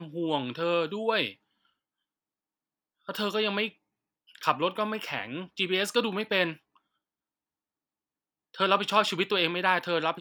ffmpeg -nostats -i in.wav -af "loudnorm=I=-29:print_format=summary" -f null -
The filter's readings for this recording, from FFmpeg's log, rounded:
Input Integrated:    -27.4 LUFS
Input True Peak:      -6.8 dBTP
Input LRA:             4.5 LU
Input Threshold:     -37.9 LUFS